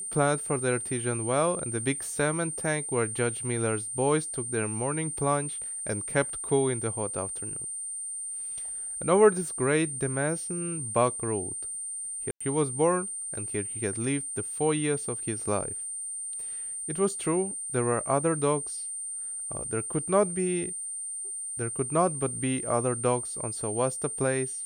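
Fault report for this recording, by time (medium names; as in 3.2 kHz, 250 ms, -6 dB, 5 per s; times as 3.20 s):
whine 8.9 kHz -33 dBFS
12.31–12.40 s: dropout 95 ms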